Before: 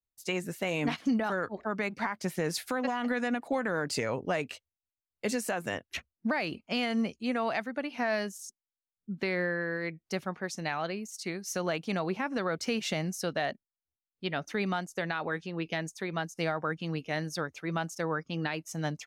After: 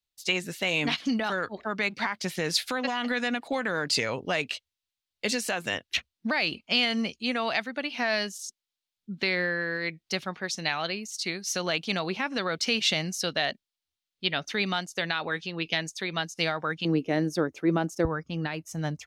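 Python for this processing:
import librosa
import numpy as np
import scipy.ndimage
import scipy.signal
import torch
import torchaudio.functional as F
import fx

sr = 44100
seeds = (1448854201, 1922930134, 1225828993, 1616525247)

y = fx.peak_eq(x, sr, hz=fx.steps((0.0, 3700.0), (16.85, 330.0), (18.05, 62.0)), db=13.0, octaves=1.6)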